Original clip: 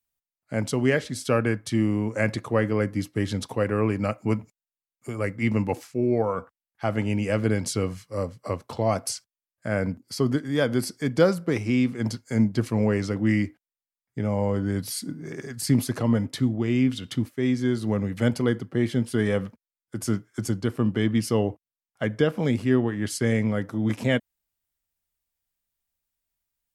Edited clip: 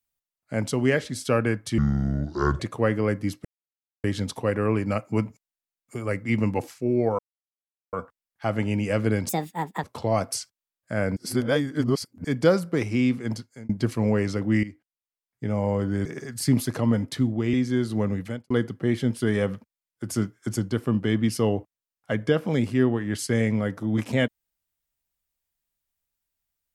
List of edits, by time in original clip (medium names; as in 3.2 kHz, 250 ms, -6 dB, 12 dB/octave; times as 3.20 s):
1.78–2.32 s: speed 66%
3.17 s: insert silence 0.59 s
6.32 s: insert silence 0.74 s
7.68–8.58 s: speed 165%
9.91–10.99 s: reverse
11.93–12.44 s: fade out
13.38–14.30 s: fade in, from -15 dB
14.80–15.27 s: delete
16.75–17.45 s: delete
18.12–18.42 s: fade out quadratic